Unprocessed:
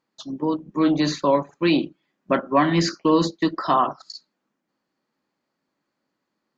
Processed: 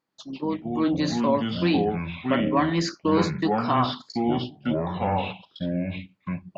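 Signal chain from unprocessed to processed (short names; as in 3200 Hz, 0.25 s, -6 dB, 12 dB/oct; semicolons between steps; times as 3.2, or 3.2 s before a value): echoes that change speed 86 ms, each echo -5 st, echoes 2; gain -4.5 dB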